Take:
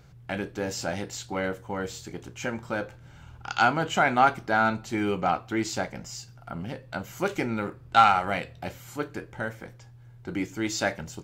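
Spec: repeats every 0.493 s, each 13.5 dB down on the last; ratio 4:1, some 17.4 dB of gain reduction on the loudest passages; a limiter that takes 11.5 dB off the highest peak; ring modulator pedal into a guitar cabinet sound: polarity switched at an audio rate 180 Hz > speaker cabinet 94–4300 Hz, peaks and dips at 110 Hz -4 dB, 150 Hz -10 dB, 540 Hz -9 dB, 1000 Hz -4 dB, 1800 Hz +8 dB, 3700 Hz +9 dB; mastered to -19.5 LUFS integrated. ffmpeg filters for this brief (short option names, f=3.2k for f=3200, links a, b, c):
-af "acompressor=threshold=-34dB:ratio=4,alimiter=level_in=5dB:limit=-24dB:level=0:latency=1,volume=-5dB,aecho=1:1:493|986:0.211|0.0444,aeval=exprs='val(0)*sgn(sin(2*PI*180*n/s))':c=same,highpass=94,equalizer=f=110:t=q:w=4:g=-4,equalizer=f=150:t=q:w=4:g=-10,equalizer=f=540:t=q:w=4:g=-9,equalizer=f=1k:t=q:w=4:g=-4,equalizer=f=1.8k:t=q:w=4:g=8,equalizer=f=3.7k:t=q:w=4:g=9,lowpass=f=4.3k:w=0.5412,lowpass=f=4.3k:w=1.3066,volume=21dB"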